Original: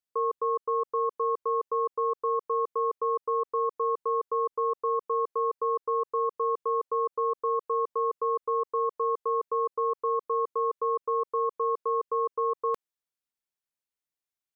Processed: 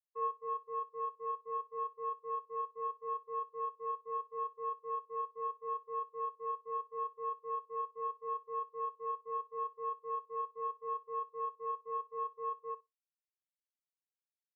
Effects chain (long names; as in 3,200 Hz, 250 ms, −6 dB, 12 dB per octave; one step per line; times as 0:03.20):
flutter between parallel walls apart 10.2 metres, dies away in 0.85 s
power curve on the samples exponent 2
every bin expanded away from the loudest bin 2.5 to 1
level −7 dB